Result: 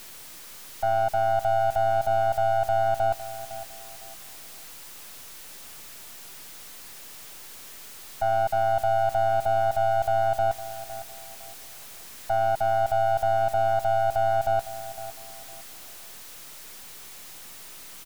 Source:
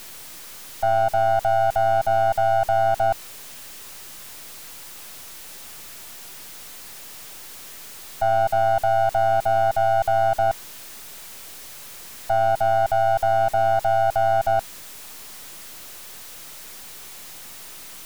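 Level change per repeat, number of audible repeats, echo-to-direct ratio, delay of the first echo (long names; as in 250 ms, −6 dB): −11.0 dB, 2, −14.0 dB, 508 ms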